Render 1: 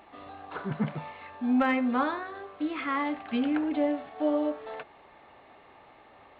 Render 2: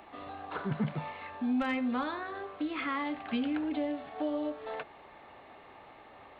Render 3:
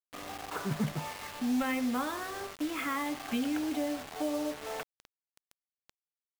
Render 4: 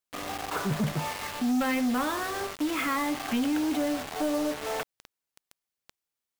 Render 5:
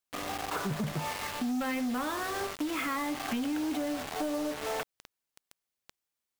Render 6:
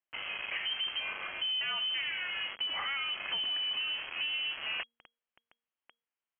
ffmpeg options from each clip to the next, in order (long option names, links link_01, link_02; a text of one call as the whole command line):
ffmpeg -i in.wav -filter_complex "[0:a]acrossover=split=160|3000[link_01][link_02][link_03];[link_02]acompressor=threshold=-35dB:ratio=3[link_04];[link_01][link_04][link_03]amix=inputs=3:normalize=0,volume=1.5dB" out.wav
ffmpeg -i in.wav -af "acrusher=bits=6:mix=0:aa=0.000001" out.wav
ffmpeg -i in.wav -af "asoftclip=type=tanh:threshold=-29.5dB,volume=7.5dB" out.wav
ffmpeg -i in.wav -af "acompressor=threshold=-30dB:ratio=6" out.wav
ffmpeg -i in.wav -af "lowpass=frequency=2800:width_type=q:width=0.5098,lowpass=frequency=2800:width_type=q:width=0.6013,lowpass=frequency=2800:width_type=q:width=0.9,lowpass=frequency=2800:width_type=q:width=2.563,afreqshift=-3300,bandreject=frequency=234.2:width_type=h:width=4,bandreject=frequency=468.4:width_type=h:width=4,volume=-2dB" out.wav